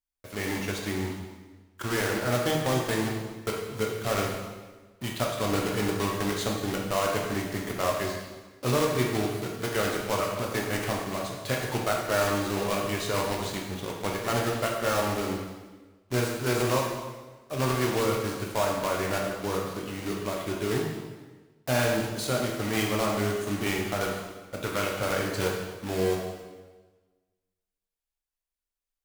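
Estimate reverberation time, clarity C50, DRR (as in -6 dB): 1.3 s, 2.5 dB, -1.0 dB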